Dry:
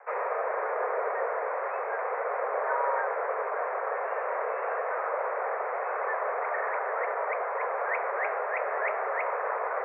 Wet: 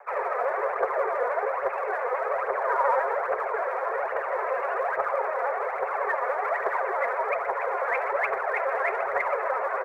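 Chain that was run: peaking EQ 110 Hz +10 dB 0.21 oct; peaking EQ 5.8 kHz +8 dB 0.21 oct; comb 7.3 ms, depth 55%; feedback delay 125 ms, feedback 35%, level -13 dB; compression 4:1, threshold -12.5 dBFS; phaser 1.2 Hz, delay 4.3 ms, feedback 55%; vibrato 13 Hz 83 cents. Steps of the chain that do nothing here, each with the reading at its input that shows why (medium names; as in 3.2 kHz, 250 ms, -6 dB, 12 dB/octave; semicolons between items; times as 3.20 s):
peaking EQ 110 Hz: input has nothing below 340 Hz; peaking EQ 5.8 kHz: input has nothing above 2.6 kHz; compression, threshold -12.5 dBFS: peak at its input -14.0 dBFS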